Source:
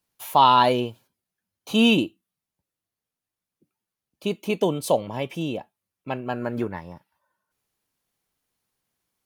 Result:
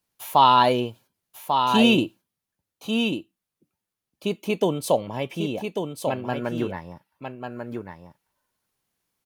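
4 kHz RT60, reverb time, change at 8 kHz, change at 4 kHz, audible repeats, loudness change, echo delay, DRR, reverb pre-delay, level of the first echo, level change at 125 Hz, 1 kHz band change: none, none, +1.0 dB, +1.0 dB, 1, -0.5 dB, 1.143 s, none, none, -6.0 dB, +1.0 dB, +1.0 dB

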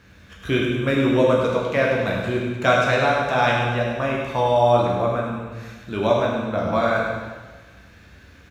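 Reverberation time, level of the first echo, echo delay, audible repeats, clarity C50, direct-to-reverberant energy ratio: 1.3 s, -6.5 dB, 0.1 s, 1, 0.5 dB, -3.5 dB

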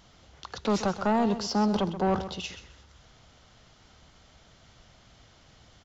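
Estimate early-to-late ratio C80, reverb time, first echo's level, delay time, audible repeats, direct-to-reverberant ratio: none, none, -12.0 dB, 0.13 s, 2, none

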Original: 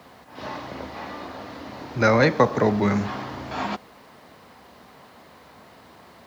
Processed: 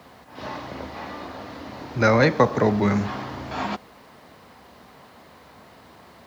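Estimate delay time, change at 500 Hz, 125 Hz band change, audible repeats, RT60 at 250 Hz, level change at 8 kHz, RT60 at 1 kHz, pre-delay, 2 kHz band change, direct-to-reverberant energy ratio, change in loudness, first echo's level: none, 0.0 dB, +1.5 dB, none, none, n/a, none, none, 0.0 dB, none, +0.5 dB, none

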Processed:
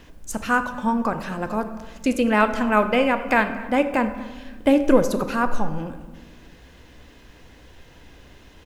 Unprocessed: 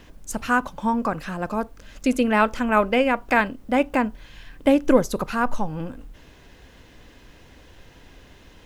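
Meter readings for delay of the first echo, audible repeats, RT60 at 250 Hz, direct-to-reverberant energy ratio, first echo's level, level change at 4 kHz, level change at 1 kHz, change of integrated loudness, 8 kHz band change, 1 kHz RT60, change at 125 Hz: 0.238 s, 1, 2.0 s, 8.5 dB, -21.0 dB, +0.5 dB, +0.5 dB, +0.5 dB, 0.0 dB, 1.2 s, +0.5 dB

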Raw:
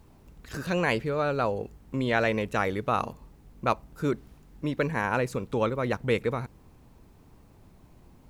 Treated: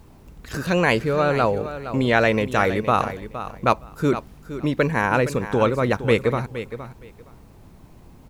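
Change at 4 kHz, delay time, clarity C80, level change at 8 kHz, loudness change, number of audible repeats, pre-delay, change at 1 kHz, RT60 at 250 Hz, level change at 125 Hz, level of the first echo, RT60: +7.5 dB, 0.466 s, none, +7.5 dB, +7.0 dB, 2, none, +7.5 dB, none, +7.5 dB, -12.0 dB, none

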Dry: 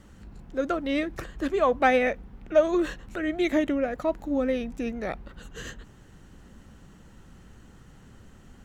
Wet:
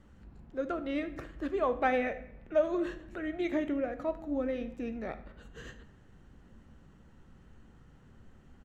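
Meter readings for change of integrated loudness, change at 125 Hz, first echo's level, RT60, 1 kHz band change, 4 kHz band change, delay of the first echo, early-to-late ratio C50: -7.0 dB, -6.5 dB, -18.0 dB, 0.80 s, -7.0 dB, -11.0 dB, 75 ms, 13.0 dB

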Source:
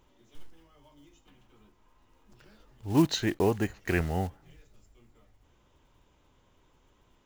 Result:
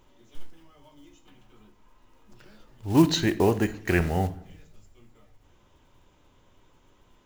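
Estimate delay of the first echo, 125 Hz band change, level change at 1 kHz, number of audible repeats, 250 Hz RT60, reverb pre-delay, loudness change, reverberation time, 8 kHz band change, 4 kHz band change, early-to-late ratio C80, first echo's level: none, +4.5 dB, +4.5 dB, none, 0.85 s, 3 ms, +4.5 dB, 0.60 s, +4.0 dB, +4.5 dB, 19.5 dB, none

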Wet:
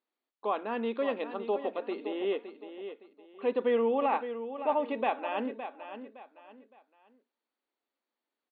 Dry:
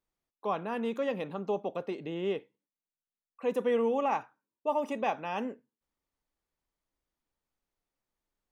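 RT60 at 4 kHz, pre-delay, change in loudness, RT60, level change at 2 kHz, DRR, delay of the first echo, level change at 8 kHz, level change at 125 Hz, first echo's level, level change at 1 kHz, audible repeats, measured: none, none, +1.0 dB, none, +1.5 dB, none, 0.564 s, n/a, under -10 dB, -10.5 dB, +1.5 dB, 3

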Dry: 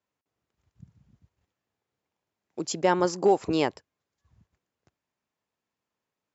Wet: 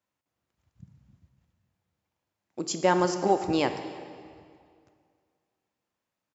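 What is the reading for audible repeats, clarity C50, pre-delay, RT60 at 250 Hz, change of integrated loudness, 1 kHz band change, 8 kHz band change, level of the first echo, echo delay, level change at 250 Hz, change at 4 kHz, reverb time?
1, 9.0 dB, 8 ms, 2.2 s, -1.0 dB, +0.5 dB, n/a, -23.5 dB, 0.314 s, 0.0 dB, +0.5 dB, 2.2 s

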